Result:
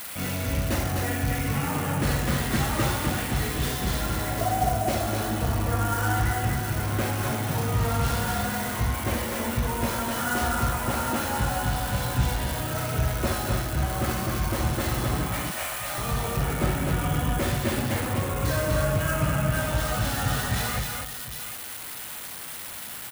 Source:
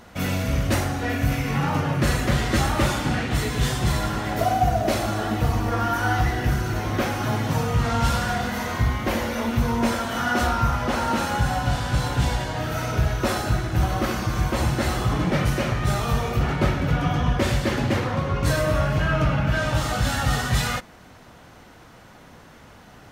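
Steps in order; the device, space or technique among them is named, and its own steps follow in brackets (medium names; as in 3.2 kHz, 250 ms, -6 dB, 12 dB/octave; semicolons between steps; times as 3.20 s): 15.26–15.98 s: elliptic band-pass 650–9800 Hz; multi-tap echo 58/154/195/240/251/752 ms -9.5/-17/-19.5/-17/-4.5/-15.5 dB; budget class-D amplifier (dead-time distortion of 0.1 ms; zero-crossing glitches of -15.5 dBFS); trim -5.5 dB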